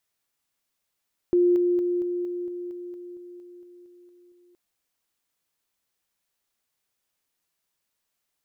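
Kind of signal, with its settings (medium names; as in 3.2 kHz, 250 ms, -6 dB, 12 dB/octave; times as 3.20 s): level ladder 353 Hz -16 dBFS, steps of -3 dB, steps 14, 0.23 s 0.00 s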